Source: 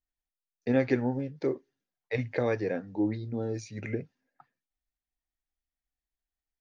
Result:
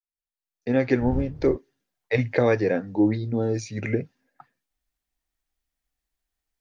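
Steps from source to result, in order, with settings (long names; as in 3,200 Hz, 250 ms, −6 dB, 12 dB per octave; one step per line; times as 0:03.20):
fade in at the beginning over 1.33 s
0:01.00–0:01.55: wind on the microphone 120 Hz −26 dBFS
level +8 dB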